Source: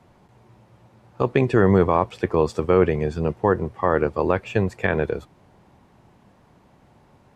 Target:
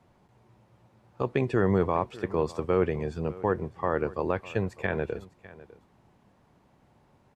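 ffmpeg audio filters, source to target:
ffmpeg -i in.wav -af "aecho=1:1:603:0.112,volume=-7.5dB" out.wav

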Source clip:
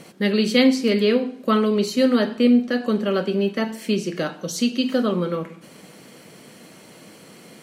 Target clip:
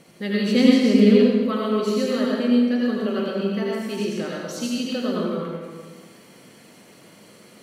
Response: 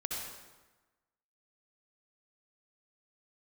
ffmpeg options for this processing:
-filter_complex "[0:a]asettb=1/sr,asplit=3[link_01][link_02][link_03];[link_01]atrim=end=0.484[link_04];[link_02]atrim=start=0.48:end=1.46,asetpts=PTS-STARTPTS,afade=type=in:duration=0.004:curve=qsin,afade=type=out:start_time=0.976:duration=0.004:curve=qsin,equalizer=frequency=190:width_type=o:width=1.7:gain=9[link_05];[link_03]atrim=start=1.456[link_06];[link_04][link_05]acrossfade=duration=0.004:curve1=hsin:curve2=qsin[link_07];[link_07][link_06]acrossfade=duration=0.004:curve1=qsin:curve2=hsin[link_08];[1:a]atrim=start_sample=2205,asetrate=35721,aresample=44100[link_09];[link_08][link_09]afir=irnorm=-1:irlink=0,volume=-7dB"

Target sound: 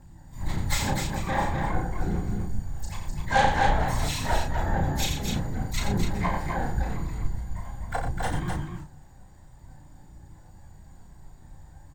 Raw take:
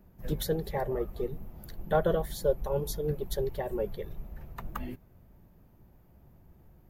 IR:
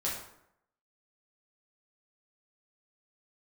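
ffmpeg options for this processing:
-filter_complex "[0:a]highshelf=frequency=3000:width_type=q:width=1.5:gain=-11,aeval=exprs='(tanh(22.4*val(0)+0.4)-tanh(0.4))/22.4':channel_layout=same,bandreject=frequency=181.9:width_type=h:width=4,bandreject=frequency=363.8:width_type=h:width=4,bandreject=frequency=545.7:width_type=h:width=4,bandreject=frequency=727.6:width_type=h:width=4,bandreject=frequency=909.5:width_type=h:width=4,flanger=delay=0.1:depth=3:regen=27:speed=0.85:shape=triangular,acontrast=71,afftfilt=real='hypot(re,im)*cos(2*PI*random(0))':imag='hypot(re,im)*sin(2*PI*random(1))':win_size=512:overlap=0.75,asetrate=25442,aresample=44100,firequalizer=gain_entry='entry(100,0);entry(160,6);entry(270,-16);entry(460,-15);entry(800,13);entry(1300,-2);entry(1900,14);entry(3600,5);entry(5300,-11)':delay=0.05:min_phase=1,aexciter=amount=6.6:drive=8.7:freq=3600,asplit=3[link_01][link_02][link_03];[link_02]asetrate=29433,aresample=44100,atempo=1.49831,volume=-7dB[link_04];[link_03]asetrate=88200,aresample=44100,atempo=0.5,volume=-7dB[link_05];[link_01][link_04][link_05]amix=inputs=3:normalize=0,asplit=2[link_06][link_07];[link_07]adelay=34,volume=-4.5dB[link_08];[link_06][link_08]amix=inputs=2:normalize=0,aecho=1:1:87.46|253.6:0.447|0.562,volume=8dB"

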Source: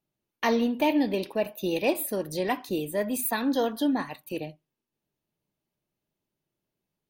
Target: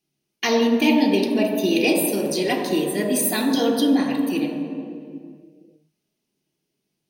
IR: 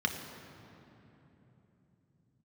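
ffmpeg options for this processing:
-filter_complex "[0:a]highshelf=frequency=2600:gain=9[link_01];[1:a]atrim=start_sample=2205,asetrate=74970,aresample=44100[link_02];[link_01][link_02]afir=irnorm=-1:irlink=0,volume=1dB"

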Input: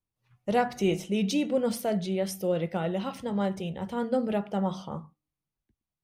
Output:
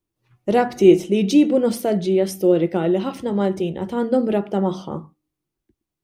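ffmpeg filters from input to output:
ffmpeg -i in.wav -af "equalizer=frequency=340:width=2.5:gain=13.5,volume=5dB" out.wav

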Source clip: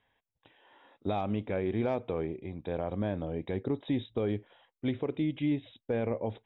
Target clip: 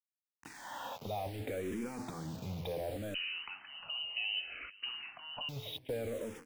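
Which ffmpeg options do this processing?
ffmpeg -i in.wav -filter_complex "[0:a]highpass=55,equalizer=frequency=380:width=6.4:gain=-6.5,bandreject=frequency=86.94:width_type=h:width=4,bandreject=frequency=173.88:width_type=h:width=4,bandreject=frequency=260.82:width_type=h:width=4,bandreject=frequency=347.76:width_type=h:width=4,bandreject=frequency=434.7:width_type=h:width=4,bandreject=frequency=521.64:width_type=h:width=4,bandreject=frequency=608.58:width_type=h:width=4,bandreject=frequency=695.52:width_type=h:width=4,bandreject=frequency=782.46:width_type=h:width=4,bandreject=frequency=869.4:width_type=h:width=4,bandreject=frequency=956.34:width_type=h:width=4,bandreject=frequency=1043.28:width_type=h:width=4,bandreject=frequency=1130.22:width_type=h:width=4,bandreject=frequency=1217.16:width_type=h:width=4,dynaudnorm=framelen=510:gausssize=3:maxgain=11dB,alimiter=limit=-23.5dB:level=0:latency=1:release=12,acompressor=threshold=-46dB:ratio=6,asoftclip=type=tanh:threshold=-38.5dB,acrusher=bits=9:mix=0:aa=0.000001,aecho=1:1:483|966|1449:0.1|0.041|0.0168,asettb=1/sr,asplit=3[link_01][link_02][link_03];[link_01]atrim=end=3.144[link_04];[link_02]atrim=start=3.14:end=5.49,asetpts=PTS-STARTPTS,afade=type=in:duration=0.004:curve=qsin,afade=type=out:start_time=2.346:duration=0.004:curve=qsin,lowpass=frequency=2600:width_type=q:width=0.5098,lowpass=frequency=2600:width_type=q:width=0.6013,lowpass=frequency=2600:width_type=q:width=0.9,lowpass=frequency=2600:width_type=q:width=2.563,afreqshift=-3100[link_05];[link_03]atrim=start=5.486[link_06];[link_04][link_05]acrossfade=duration=0.004:curve1=hsin:curve2=qsin[link_07];[link_07][link_06]acrossfade=duration=0.004:curve1=qsin:curve2=hsin,asplit=2[link_08][link_09];[link_09]afreqshift=-0.66[link_10];[link_08][link_10]amix=inputs=2:normalize=1,volume=12dB" out.wav

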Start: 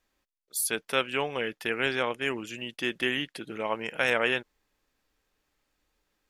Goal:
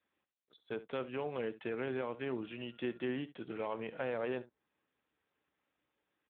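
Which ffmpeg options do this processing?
ffmpeg -i in.wav -filter_complex "[0:a]acrossover=split=1000[link_01][link_02];[link_01]alimiter=level_in=1.5dB:limit=-24dB:level=0:latency=1:release=10,volume=-1.5dB[link_03];[link_02]acompressor=threshold=-41dB:ratio=10[link_04];[link_03][link_04]amix=inputs=2:normalize=0,asettb=1/sr,asplit=3[link_05][link_06][link_07];[link_05]atrim=end=2.134[link_08];[link_06]atrim=start=2.13:end=3.05,asetpts=PTS-STARTPTS,afade=type=in:duration=0.004:curve=qsin,afade=type=out:start_time=0.916:duration=0.004:curve=qsin,aeval=exprs='val(0)+0.000794*sin(2*PI*1400*n/s)':channel_layout=same[link_09];[link_07]atrim=start=3.046[link_10];[link_08][link_09]acrossfade=duration=0.004:curve1=hsin:curve2=qsin[link_11];[link_11][link_10]acrossfade=duration=0.004:curve1=qsin:curve2=hsin,aecho=1:1:16|67:0.158|0.158,volume=-4.5dB" -ar 8000 -c:a libspeex -b:a 11k out.spx

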